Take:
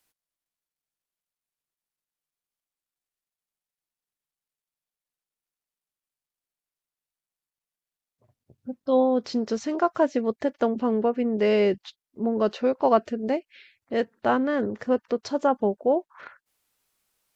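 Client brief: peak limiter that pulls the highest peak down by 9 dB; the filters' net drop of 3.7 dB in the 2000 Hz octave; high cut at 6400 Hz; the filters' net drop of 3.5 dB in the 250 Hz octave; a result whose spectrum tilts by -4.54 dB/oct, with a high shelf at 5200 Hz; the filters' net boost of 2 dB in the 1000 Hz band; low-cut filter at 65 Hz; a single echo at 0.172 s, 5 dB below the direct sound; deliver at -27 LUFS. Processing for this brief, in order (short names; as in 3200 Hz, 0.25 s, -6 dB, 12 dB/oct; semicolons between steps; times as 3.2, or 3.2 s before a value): HPF 65 Hz; LPF 6400 Hz; bell 250 Hz -4 dB; bell 1000 Hz +4.5 dB; bell 2000 Hz -7.5 dB; high shelf 5200 Hz +3.5 dB; limiter -14.5 dBFS; echo 0.172 s -5 dB; gain -1 dB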